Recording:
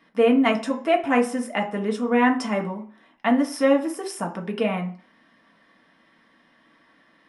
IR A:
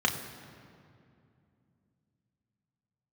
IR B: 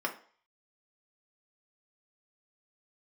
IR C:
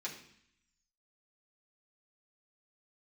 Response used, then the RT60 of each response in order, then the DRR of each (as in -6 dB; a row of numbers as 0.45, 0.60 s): B; 2.5, 0.45, 0.65 s; 1.5, 0.5, -5.5 dB